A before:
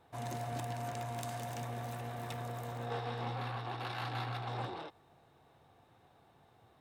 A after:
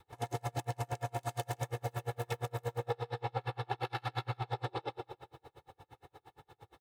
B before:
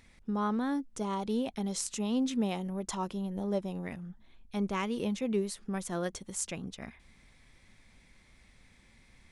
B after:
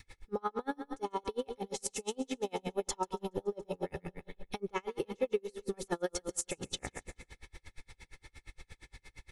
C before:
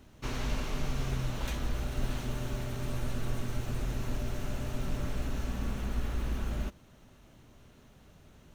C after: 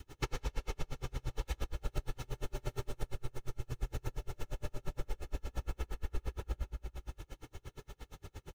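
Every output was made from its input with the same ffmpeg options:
-af "aecho=1:1:2.3:0.75,aecho=1:1:141|282|423|564|705|846:0.282|0.155|0.0853|0.0469|0.0258|0.0142,acompressor=threshold=0.0112:ratio=6,adynamicequalizer=threshold=0.00126:dfrequency=580:dqfactor=1.7:tfrequency=580:tqfactor=1.7:attack=5:release=100:ratio=0.375:range=2:mode=boostabove:tftype=bell,aeval=exprs='val(0)*pow(10,-37*(0.5-0.5*cos(2*PI*8.6*n/s))/20)':c=same,volume=3.16"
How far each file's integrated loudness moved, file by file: +1.5 LU, -4.0 LU, -7.5 LU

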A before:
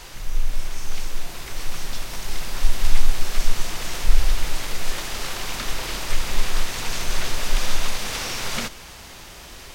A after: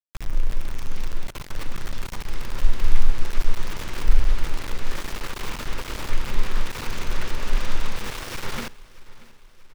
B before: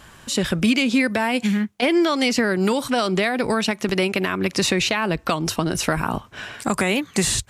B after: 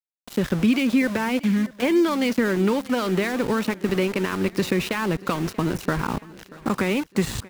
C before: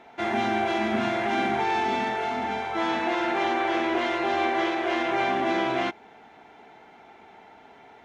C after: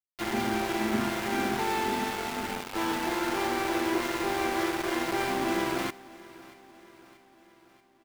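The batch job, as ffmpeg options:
-filter_complex "[0:a]lowpass=f=1400:p=1,equalizer=f=690:t=o:w=0.32:g=-9.5,aeval=exprs='val(0)*gte(abs(val(0)),0.0335)':c=same,asplit=2[s0][s1];[s1]aecho=0:1:634|1268|1902|2536:0.0944|0.0538|0.0307|0.0175[s2];[s0][s2]amix=inputs=2:normalize=0"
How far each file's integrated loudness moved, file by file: -3.0 LU, -2.0 LU, -3.5 LU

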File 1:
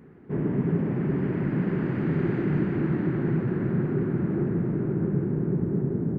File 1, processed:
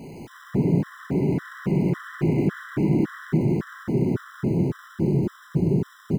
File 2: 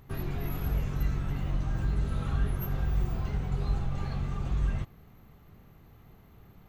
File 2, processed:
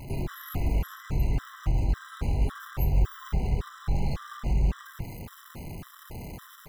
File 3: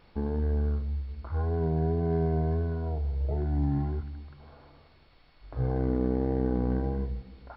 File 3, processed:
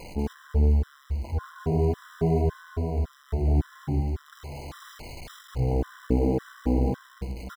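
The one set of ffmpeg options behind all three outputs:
-af "aeval=exprs='val(0)+0.5*0.0112*sgn(val(0))':c=same,aecho=1:1:190:0.708,afftfilt=real='re*gt(sin(2*PI*1.8*pts/sr)*(1-2*mod(floor(b*sr/1024/1000),2)),0)':imag='im*gt(sin(2*PI*1.8*pts/sr)*(1-2*mod(floor(b*sr/1024/1000),2)),0)':win_size=1024:overlap=0.75,volume=1.33"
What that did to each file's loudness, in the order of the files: +2.0 LU, +2.0 LU, +2.0 LU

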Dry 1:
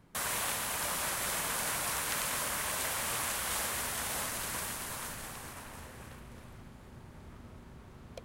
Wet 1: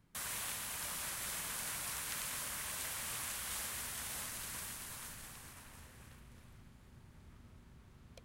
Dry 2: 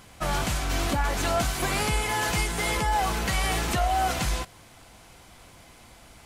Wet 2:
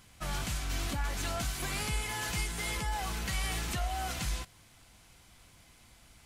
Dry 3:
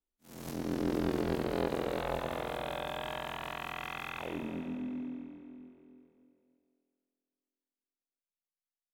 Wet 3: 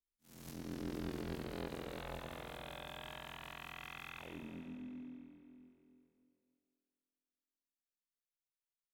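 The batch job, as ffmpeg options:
-af "equalizer=f=590:w=0.5:g=-7.5,volume=0.501"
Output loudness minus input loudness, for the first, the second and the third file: -7.0 LU, -8.5 LU, -10.5 LU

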